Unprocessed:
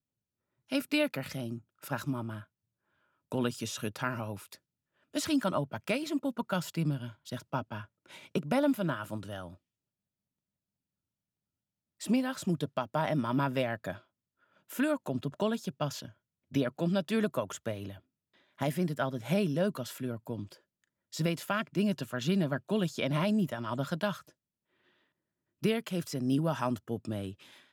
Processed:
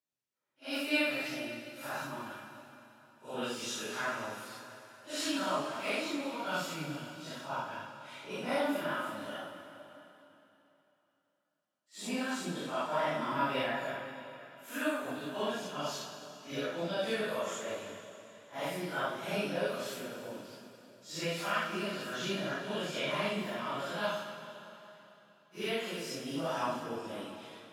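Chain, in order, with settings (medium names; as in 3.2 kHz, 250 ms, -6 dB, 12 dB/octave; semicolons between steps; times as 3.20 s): phase randomisation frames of 200 ms; frequency weighting A; reverberation RT60 3.3 s, pre-delay 5 ms, DRR 5 dB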